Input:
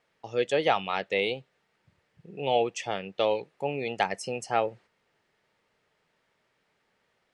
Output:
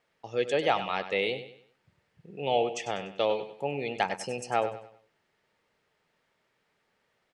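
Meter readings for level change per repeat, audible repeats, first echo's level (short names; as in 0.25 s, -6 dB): -9.0 dB, 3, -11.5 dB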